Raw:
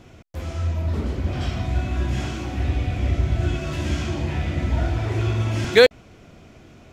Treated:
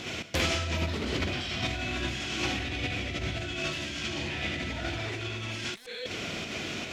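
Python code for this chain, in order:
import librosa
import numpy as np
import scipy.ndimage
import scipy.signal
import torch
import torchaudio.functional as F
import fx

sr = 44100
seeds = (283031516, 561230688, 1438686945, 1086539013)

p1 = fx.weighting(x, sr, curve='D')
p2 = fx.rev_gated(p1, sr, seeds[0], gate_ms=210, shape='flat', drr_db=11.5)
p3 = fx.volume_shaper(p2, sr, bpm=149, per_beat=1, depth_db=-11, release_ms=63.0, shape='slow start')
p4 = p2 + F.gain(torch.from_numpy(p3), 0.5).numpy()
p5 = fx.cheby_harmonics(p4, sr, harmonics=(7,), levels_db=(-10,), full_scale_db=12.0)
p6 = fx.over_compress(p5, sr, threshold_db=-28.0, ratio=-1.0)
y = F.gain(torch.from_numpy(p6), -6.5).numpy()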